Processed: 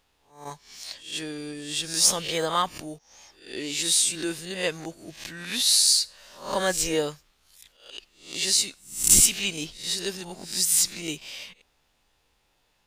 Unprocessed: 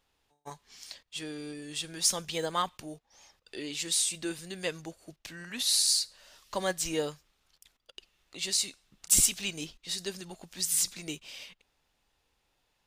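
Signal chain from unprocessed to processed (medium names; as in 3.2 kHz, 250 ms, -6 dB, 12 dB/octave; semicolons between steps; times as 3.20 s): reverse spectral sustain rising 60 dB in 0.44 s; trim +4.5 dB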